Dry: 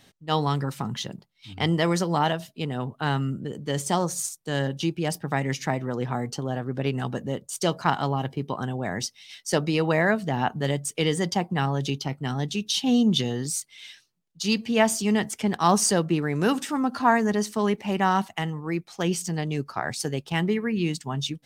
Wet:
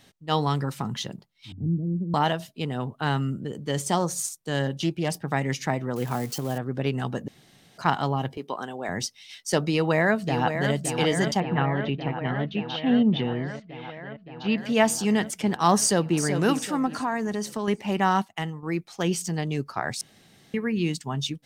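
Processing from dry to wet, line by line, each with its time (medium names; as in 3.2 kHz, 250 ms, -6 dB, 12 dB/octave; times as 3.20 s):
1.52–2.14 s: inverse Chebyshev low-pass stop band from 1.6 kHz, stop band 80 dB
4.75–5.28 s: loudspeaker Doppler distortion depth 0.16 ms
5.96–6.58 s: zero-crossing glitches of -29.5 dBFS
7.28–7.78 s: room tone
8.37–8.89 s: high-pass 340 Hz
9.70–10.74 s: echo throw 570 ms, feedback 80%, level -7 dB
11.40–14.58 s: low-pass 2.9 kHz 24 dB/octave
15.79–16.20 s: echo throw 380 ms, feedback 40%, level -8 dB
16.86–17.68 s: compression 2.5:1, threshold -26 dBFS
18.19–18.63 s: upward expansion, over -50 dBFS
20.01–20.54 s: room tone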